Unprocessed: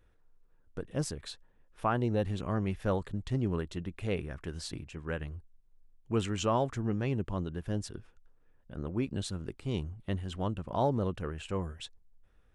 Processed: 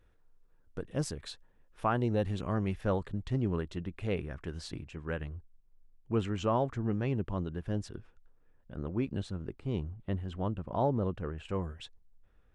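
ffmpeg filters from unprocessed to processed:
-af "asetnsamples=n=441:p=0,asendcmd='2.81 lowpass f 4100;5.28 lowpass f 1900;6.81 lowpass f 3200;9.22 lowpass f 1500;11.45 lowpass f 3300',lowpass=f=9.9k:p=1"

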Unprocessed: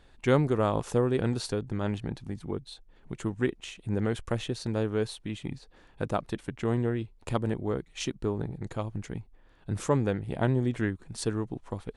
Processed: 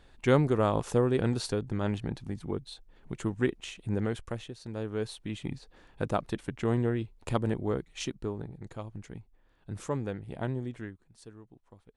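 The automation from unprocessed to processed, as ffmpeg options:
-af "volume=12dB,afade=t=out:st=3.84:d=0.72:silence=0.251189,afade=t=in:st=4.56:d=0.88:silence=0.251189,afade=t=out:st=7.73:d=0.74:silence=0.446684,afade=t=out:st=10.5:d=0.63:silence=0.237137"

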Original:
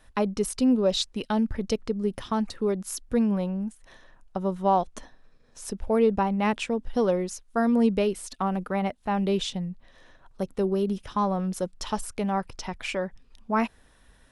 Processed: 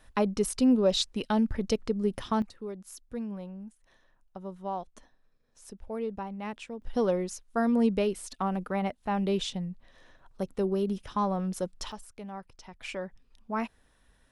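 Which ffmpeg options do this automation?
-af "asetnsamples=n=441:p=0,asendcmd='2.42 volume volume -12.5dB;6.82 volume volume -3dB;11.92 volume volume -14dB;12.81 volume volume -7dB',volume=-1dB"

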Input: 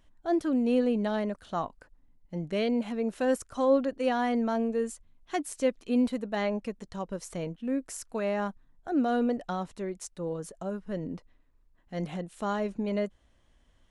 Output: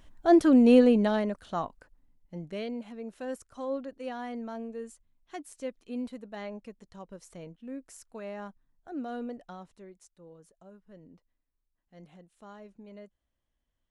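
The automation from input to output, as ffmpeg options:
-af "volume=7.5dB,afade=t=out:st=0.71:d=0.53:silence=0.473151,afade=t=out:st=1.24:d=1.6:silence=0.281838,afade=t=out:st=9.24:d=0.94:silence=0.398107"

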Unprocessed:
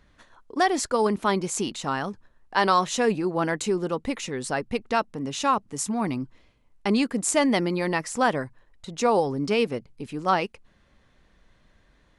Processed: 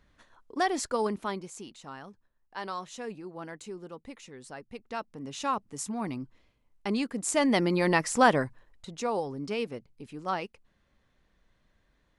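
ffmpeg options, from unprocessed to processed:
-af "volume=12dB,afade=t=out:st=0.96:d=0.57:silence=0.298538,afade=t=in:st=4.71:d=0.8:silence=0.354813,afade=t=in:st=7.21:d=0.72:silence=0.375837,afade=t=out:st=8.43:d=0.61:silence=0.298538"

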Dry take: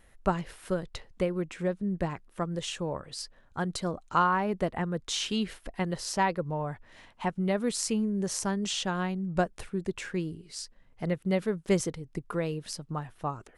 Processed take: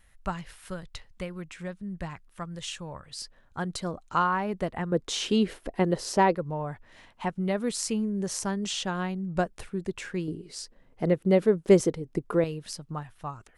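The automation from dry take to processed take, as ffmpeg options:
-af "asetnsamples=n=441:p=0,asendcmd='3.22 equalizer g -1.5;4.92 equalizer g 10;6.35 equalizer g 0;10.28 equalizer g 9;12.44 equalizer g -2;13.03 equalizer g -8.5',equalizer=f=390:t=o:w=2:g=-11"

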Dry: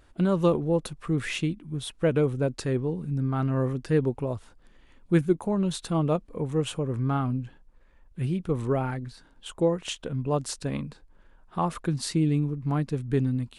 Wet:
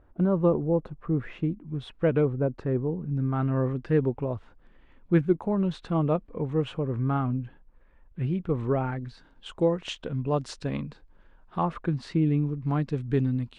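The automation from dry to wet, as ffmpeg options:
-af "asetnsamples=n=441:p=0,asendcmd='1.68 lowpass f 2400;2.25 lowpass f 1300;3.15 lowpass f 2500;9 lowpass f 4400;11.63 lowpass f 2400;12.47 lowpass f 4400',lowpass=1.1k"

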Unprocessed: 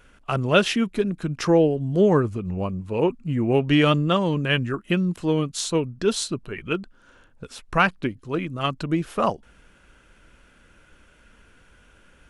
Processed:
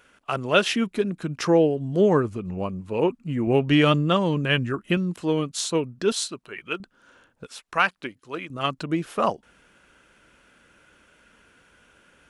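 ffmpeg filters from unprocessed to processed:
-af "asetnsamples=n=441:p=0,asendcmd='0.73 highpass f 160;3.47 highpass f 55;4.97 highpass f 190;6.12 highpass f 750;6.8 highpass f 210;7.46 highpass f 810;8.5 highpass f 200',highpass=f=340:p=1"

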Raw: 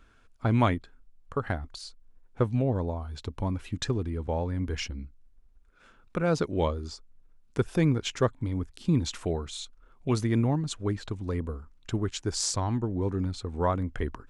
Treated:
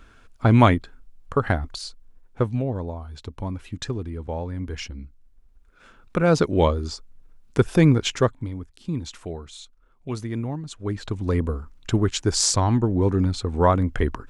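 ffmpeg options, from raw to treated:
-af "volume=28.5dB,afade=t=out:st=1.69:d=1:silence=0.375837,afade=t=in:st=4.83:d=1.62:silence=0.398107,afade=t=out:st=8.02:d=0.56:silence=0.266073,afade=t=in:st=10.74:d=0.58:silence=0.251189"

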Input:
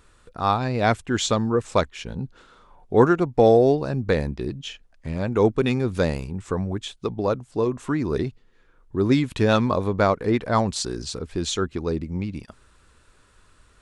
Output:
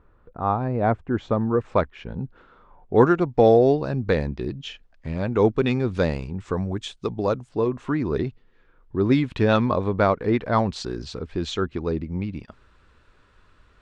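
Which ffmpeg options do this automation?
-af "asetnsamples=n=441:p=0,asendcmd='1.41 lowpass f 2000;2.96 lowpass f 4700;6.54 lowpass f 8000;7.49 lowpass f 3600',lowpass=1.1k"

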